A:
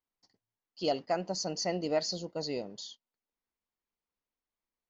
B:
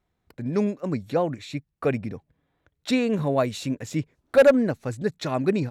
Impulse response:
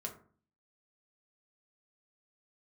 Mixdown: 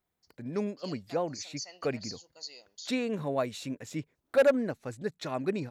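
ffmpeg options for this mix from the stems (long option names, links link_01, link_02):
-filter_complex "[0:a]aderivative,volume=2.5dB[link_01];[1:a]volume=-6.5dB,asplit=2[link_02][link_03];[link_03]apad=whole_len=215818[link_04];[link_01][link_04]sidechaincompress=threshold=-33dB:ratio=8:attack=7.8:release=549[link_05];[link_05][link_02]amix=inputs=2:normalize=0,lowshelf=frequency=160:gain=-8"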